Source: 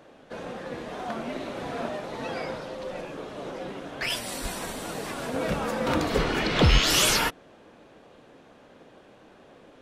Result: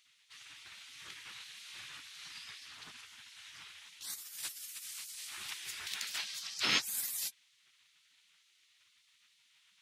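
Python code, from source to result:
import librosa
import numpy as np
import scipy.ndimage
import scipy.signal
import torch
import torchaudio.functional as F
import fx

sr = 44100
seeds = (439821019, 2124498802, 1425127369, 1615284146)

y = fx.spec_gate(x, sr, threshold_db=-20, keep='weak')
y = scipy.signal.sosfilt(scipy.signal.butter(2, 170.0, 'highpass', fs=sr, output='sos'), y)
y = fx.peak_eq(y, sr, hz=610.0, db=-14.5, octaves=2.5)
y = y * librosa.db_to_amplitude(1.0)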